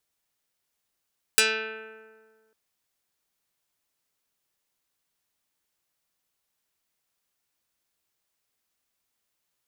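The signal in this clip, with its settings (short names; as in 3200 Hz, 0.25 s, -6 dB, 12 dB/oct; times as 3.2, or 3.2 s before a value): plucked string A3, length 1.15 s, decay 1.75 s, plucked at 0.21, dark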